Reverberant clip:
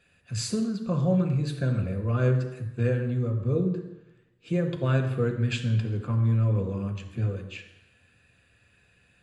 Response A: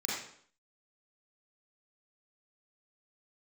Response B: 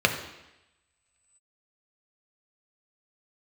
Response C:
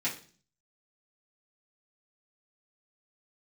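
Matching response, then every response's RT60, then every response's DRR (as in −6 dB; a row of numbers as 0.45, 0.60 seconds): B; 0.60, 0.95, 0.40 seconds; −6.0, 4.0, −8.5 decibels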